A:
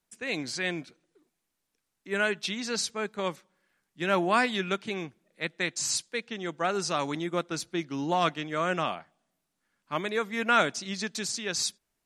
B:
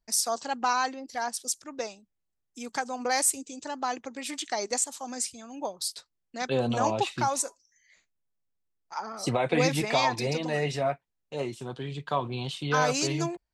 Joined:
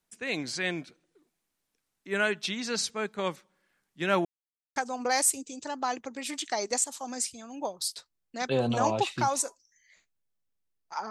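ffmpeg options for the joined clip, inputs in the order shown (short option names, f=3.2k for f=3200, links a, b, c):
-filter_complex "[0:a]apad=whole_dur=11.1,atrim=end=11.1,asplit=2[a][b];[a]atrim=end=4.25,asetpts=PTS-STARTPTS,afade=t=out:st=4.246:d=0.004:c=hsin[c];[b]atrim=start=4.25:end=4.76,asetpts=PTS-STARTPTS,volume=0[d];[1:a]atrim=start=2.76:end=9.1,asetpts=PTS-STARTPTS,afade=t=in:d=0.004:c=hsin[e];[c][d][e]concat=n=3:v=0:a=1"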